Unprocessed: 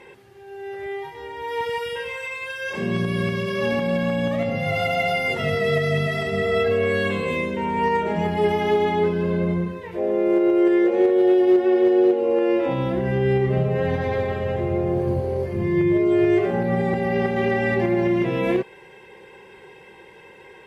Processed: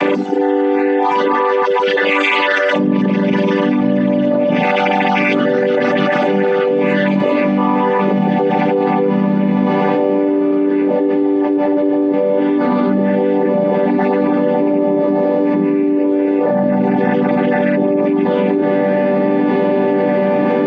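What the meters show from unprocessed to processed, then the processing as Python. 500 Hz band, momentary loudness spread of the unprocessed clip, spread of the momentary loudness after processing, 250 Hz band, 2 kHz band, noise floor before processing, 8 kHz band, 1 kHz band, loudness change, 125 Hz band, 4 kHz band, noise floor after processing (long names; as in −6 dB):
+6.5 dB, 11 LU, 1 LU, +9.5 dB, +7.0 dB, −46 dBFS, can't be measured, +10.0 dB, +7.0 dB, +2.5 dB, +6.5 dB, −15 dBFS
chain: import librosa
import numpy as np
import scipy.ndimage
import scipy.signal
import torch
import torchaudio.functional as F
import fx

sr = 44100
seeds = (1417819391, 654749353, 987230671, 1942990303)

p1 = fx.chord_vocoder(x, sr, chord='major triad', root=55)
p2 = fx.dereverb_blind(p1, sr, rt60_s=1.2)
p3 = fx.high_shelf(p2, sr, hz=4500.0, db=-5.0)
p4 = p3 + fx.echo_diffused(p3, sr, ms=1396, feedback_pct=78, wet_db=-11.5, dry=0)
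p5 = fx.env_flatten(p4, sr, amount_pct=100)
y = F.gain(torch.from_numpy(p5), 1.5).numpy()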